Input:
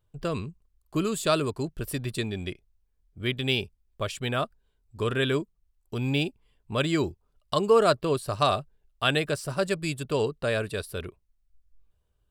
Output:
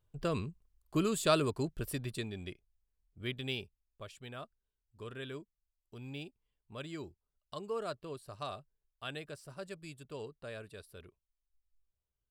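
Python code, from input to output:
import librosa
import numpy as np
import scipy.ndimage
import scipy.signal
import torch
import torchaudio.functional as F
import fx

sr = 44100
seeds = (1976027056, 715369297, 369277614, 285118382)

y = fx.gain(x, sr, db=fx.line((1.7, -4.0), (2.31, -10.0), (3.34, -10.0), (4.12, -18.0)))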